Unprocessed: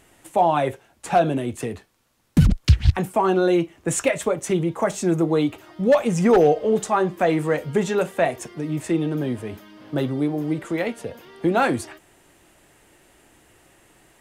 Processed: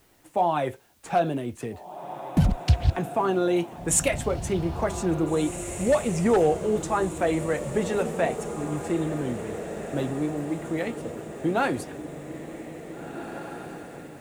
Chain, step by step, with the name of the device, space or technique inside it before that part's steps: 3.56–4.15 s: treble shelf 4.4 kHz +11.5 dB; plain cassette with noise reduction switched in (tape noise reduction on one side only decoder only; wow and flutter; white noise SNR 38 dB); echo that smears into a reverb 1834 ms, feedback 55%, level -10 dB; trim -5 dB

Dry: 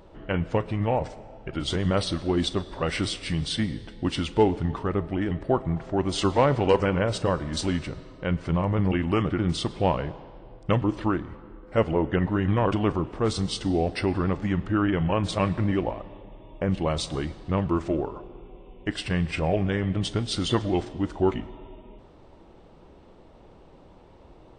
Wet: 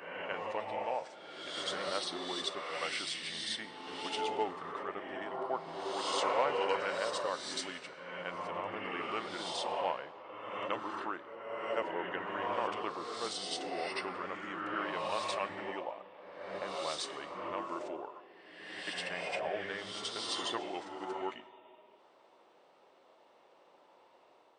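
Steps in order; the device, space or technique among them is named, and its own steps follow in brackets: ghost voice (reverse; reverberation RT60 1.7 s, pre-delay 62 ms, DRR 0 dB; reverse; high-pass 660 Hz 12 dB/octave); trim -7.5 dB

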